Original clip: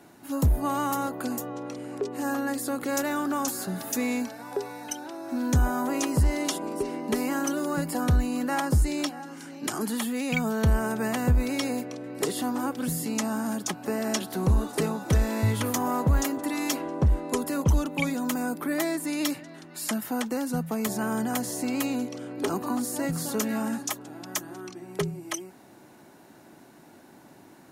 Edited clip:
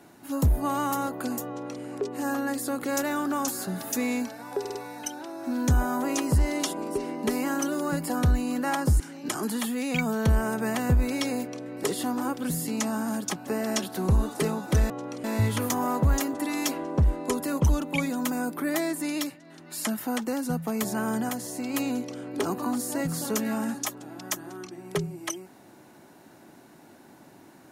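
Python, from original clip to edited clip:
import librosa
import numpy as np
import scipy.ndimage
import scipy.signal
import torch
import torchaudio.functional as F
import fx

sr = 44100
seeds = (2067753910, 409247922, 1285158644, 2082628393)

y = fx.edit(x, sr, fx.duplicate(start_s=1.48, length_s=0.34, to_s=15.28),
    fx.stutter(start_s=4.6, slice_s=0.05, count=4),
    fx.cut(start_s=8.85, length_s=0.53),
    fx.fade_down_up(start_s=19.13, length_s=0.6, db=-9.0, fade_s=0.3),
    fx.clip_gain(start_s=21.33, length_s=0.45, db=-3.5), tone=tone)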